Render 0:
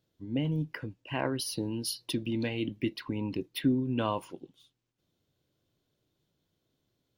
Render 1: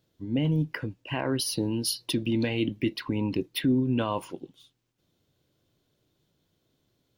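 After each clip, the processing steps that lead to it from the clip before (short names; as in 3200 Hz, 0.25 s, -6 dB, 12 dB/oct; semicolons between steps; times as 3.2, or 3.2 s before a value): limiter -22 dBFS, peak gain reduction 6.5 dB; gain +5.5 dB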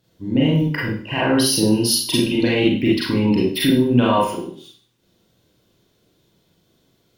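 Schroeder reverb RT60 0.48 s, combs from 33 ms, DRR -5.5 dB; added harmonics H 4 -33 dB, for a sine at -9 dBFS; gain +5 dB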